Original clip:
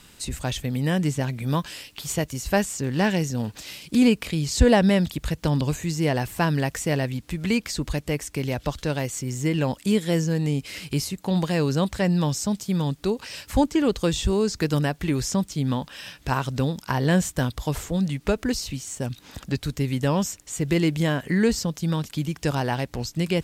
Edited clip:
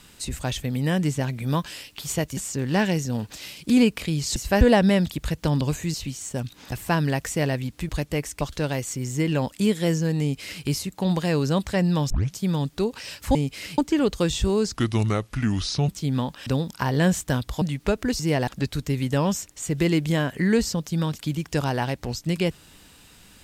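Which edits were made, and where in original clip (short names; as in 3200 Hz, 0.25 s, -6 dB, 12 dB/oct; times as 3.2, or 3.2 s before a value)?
2.37–2.62 move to 4.61
5.94–6.22 swap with 18.6–19.38
7.39–7.85 cut
8.37–8.67 cut
10.47–10.9 copy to 13.61
12.36 tape start 0.25 s
14.58–15.42 speed 74%
16–16.55 cut
17.7–18.02 cut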